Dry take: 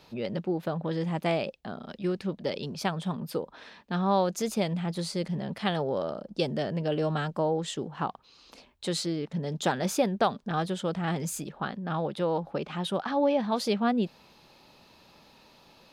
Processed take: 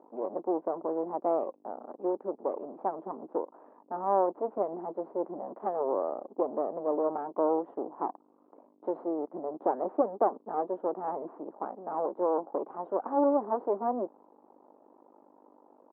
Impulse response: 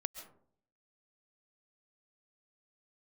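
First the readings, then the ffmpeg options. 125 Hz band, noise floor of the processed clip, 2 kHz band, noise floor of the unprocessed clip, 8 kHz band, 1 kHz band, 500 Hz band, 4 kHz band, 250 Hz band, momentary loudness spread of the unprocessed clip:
below −20 dB, −64 dBFS, below −15 dB, −59 dBFS, below −40 dB, +0.5 dB, +0.5 dB, below −40 dB, −5.5 dB, 8 LU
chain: -af "aeval=exprs='val(0)+0.00282*(sin(2*PI*50*n/s)+sin(2*PI*2*50*n/s)/2+sin(2*PI*3*50*n/s)/3+sin(2*PI*4*50*n/s)/4+sin(2*PI*5*50*n/s)/5)':channel_layout=same,aeval=exprs='max(val(0),0)':channel_layout=same,asuperpass=centerf=530:order=8:qfactor=0.71,volume=5dB"

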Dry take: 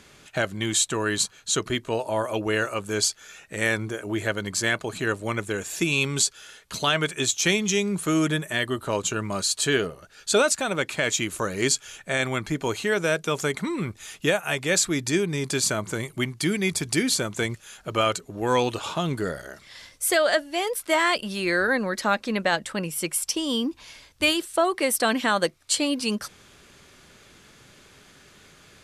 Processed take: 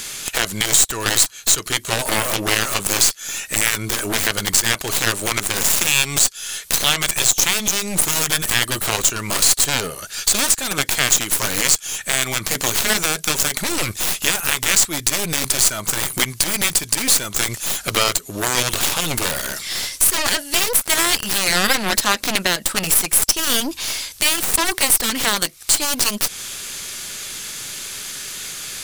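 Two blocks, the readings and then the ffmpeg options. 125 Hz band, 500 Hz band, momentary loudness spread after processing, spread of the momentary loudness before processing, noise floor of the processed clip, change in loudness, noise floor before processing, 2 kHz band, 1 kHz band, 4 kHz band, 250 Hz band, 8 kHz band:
+1.0 dB, −2.5 dB, 9 LU, 8 LU, −38 dBFS, +7.5 dB, −54 dBFS, +5.0 dB, +3.5 dB, +9.0 dB, −2.0 dB, +12.0 dB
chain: -af "crystalizer=i=9.5:c=0,acompressor=threshold=-21dB:ratio=3,asoftclip=type=tanh:threshold=-10dB,aeval=exprs='0.316*(cos(1*acos(clip(val(0)/0.316,-1,1)))-cos(1*PI/2))+0.0708*(cos(2*acos(clip(val(0)/0.316,-1,1)))-cos(2*PI/2))+0.0891*(cos(3*acos(clip(val(0)/0.316,-1,1)))-cos(3*PI/2))+0.0501*(cos(4*acos(clip(val(0)/0.316,-1,1)))-cos(4*PI/2))+0.0251*(cos(7*acos(clip(val(0)/0.316,-1,1)))-cos(7*PI/2))':channel_layout=same,alimiter=level_in=17.5dB:limit=-1dB:release=50:level=0:latency=1,volume=-1dB"

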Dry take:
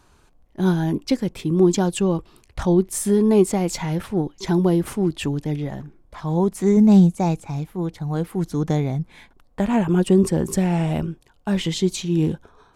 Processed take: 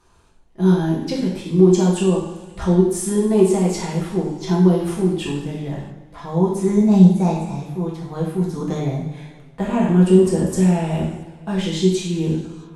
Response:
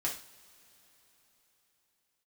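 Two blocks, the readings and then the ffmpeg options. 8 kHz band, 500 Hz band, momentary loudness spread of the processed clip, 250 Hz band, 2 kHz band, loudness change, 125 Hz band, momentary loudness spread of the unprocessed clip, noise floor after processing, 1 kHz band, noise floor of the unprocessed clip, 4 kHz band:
0.0 dB, +3.0 dB, 14 LU, +2.0 dB, 0.0 dB, +2.0 dB, +2.5 dB, 11 LU, −47 dBFS, +1.0 dB, −57 dBFS, +0.5 dB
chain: -filter_complex "[1:a]atrim=start_sample=2205,afade=type=out:start_time=0.41:duration=0.01,atrim=end_sample=18522,asetrate=23373,aresample=44100[link_01];[0:a][link_01]afir=irnorm=-1:irlink=0,volume=-7.5dB"

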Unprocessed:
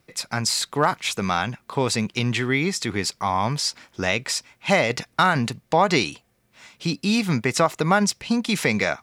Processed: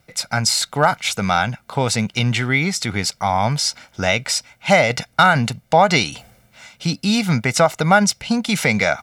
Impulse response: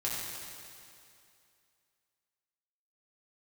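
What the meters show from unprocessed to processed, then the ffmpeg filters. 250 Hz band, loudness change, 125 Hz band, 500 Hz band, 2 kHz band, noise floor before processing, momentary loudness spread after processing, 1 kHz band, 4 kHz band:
+3.0 dB, +4.5 dB, +5.5 dB, +4.5 dB, +5.5 dB, −66 dBFS, 8 LU, +5.0 dB, +4.5 dB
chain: -af "aecho=1:1:1.4:0.53,areverse,acompressor=mode=upward:threshold=-34dB:ratio=2.5,areverse,volume=3.5dB"

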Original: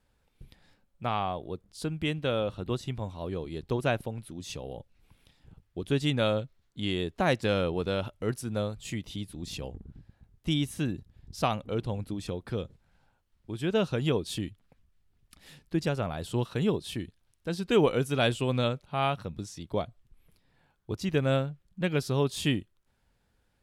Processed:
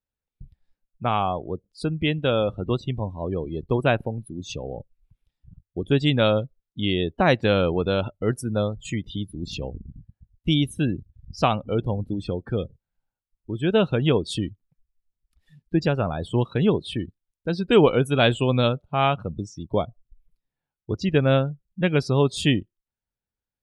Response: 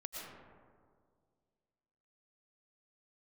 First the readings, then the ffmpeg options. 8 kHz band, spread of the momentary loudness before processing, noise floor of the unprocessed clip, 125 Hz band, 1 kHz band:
+1.5 dB, 13 LU, −72 dBFS, +7.0 dB, +7.0 dB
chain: -af "afftdn=noise_reduction=28:noise_floor=-42,volume=7dB"

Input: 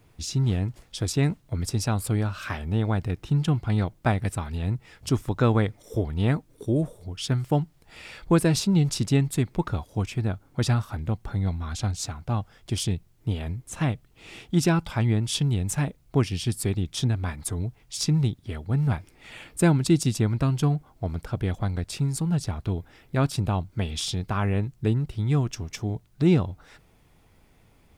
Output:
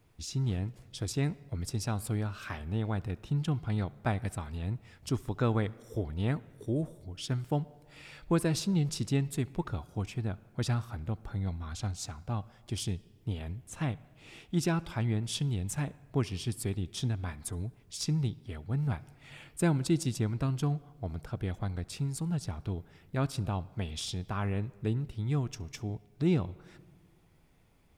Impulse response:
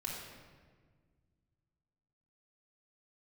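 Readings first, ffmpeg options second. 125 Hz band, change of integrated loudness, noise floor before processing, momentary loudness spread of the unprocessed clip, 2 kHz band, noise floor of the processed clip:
−7.5 dB, −7.5 dB, −59 dBFS, 10 LU, −7.5 dB, −61 dBFS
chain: -filter_complex "[0:a]asplit=2[link_01][link_02];[link_02]bass=frequency=250:gain=-6,treble=frequency=4000:gain=-6[link_03];[1:a]atrim=start_sample=2205,adelay=68[link_04];[link_03][link_04]afir=irnorm=-1:irlink=0,volume=-20.5dB[link_05];[link_01][link_05]amix=inputs=2:normalize=0,volume=-7.5dB"

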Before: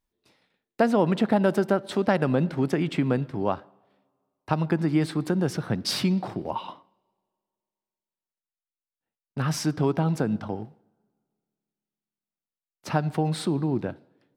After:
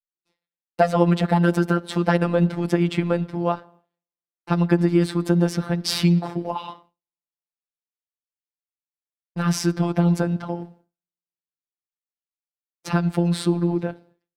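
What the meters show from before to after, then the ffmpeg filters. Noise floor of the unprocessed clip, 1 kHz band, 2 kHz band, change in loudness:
below −85 dBFS, +3.0 dB, +3.5 dB, +4.0 dB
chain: -af "agate=range=-33dB:threshold=-51dB:ratio=3:detection=peak,afftfilt=real='hypot(re,im)*cos(PI*b)':imag='0':win_size=1024:overlap=0.75,volume=7dB"

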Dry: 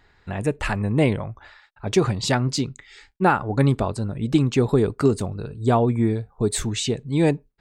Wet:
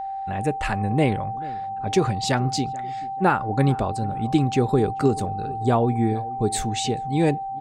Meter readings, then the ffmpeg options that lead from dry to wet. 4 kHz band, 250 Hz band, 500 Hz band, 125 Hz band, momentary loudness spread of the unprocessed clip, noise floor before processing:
−1.5 dB, −1.5 dB, −1.5 dB, −1.5 dB, 8 LU, −59 dBFS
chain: -filter_complex "[0:a]asplit=2[link_01][link_02];[link_02]adelay=436,lowpass=frequency=1100:poles=1,volume=-18.5dB,asplit=2[link_03][link_04];[link_04]adelay=436,lowpass=frequency=1100:poles=1,volume=0.4,asplit=2[link_05][link_06];[link_06]adelay=436,lowpass=frequency=1100:poles=1,volume=0.4[link_07];[link_01][link_03][link_05][link_07]amix=inputs=4:normalize=0,aeval=exprs='val(0)+0.0501*sin(2*PI*780*n/s)':channel_layout=same,volume=-1.5dB"

